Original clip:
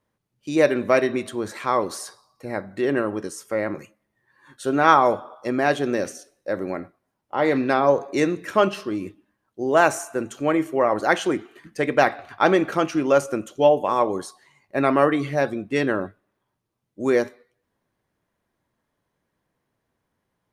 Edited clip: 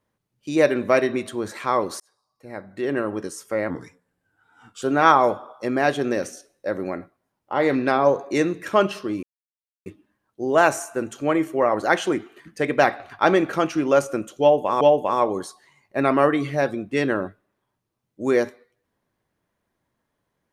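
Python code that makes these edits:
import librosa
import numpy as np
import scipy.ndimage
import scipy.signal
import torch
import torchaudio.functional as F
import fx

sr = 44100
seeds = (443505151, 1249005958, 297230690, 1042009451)

y = fx.edit(x, sr, fx.fade_in_span(start_s=2.0, length_s=1.2),
    fx.speed_span(start_s=3.7, length_s=0.94, speed=0.84),
    fx.insert_silence(at_s=9.05, length_s=0.63),
    fx.repeat(start_s=13.6, length_s=0.4, count=2), tone=tone)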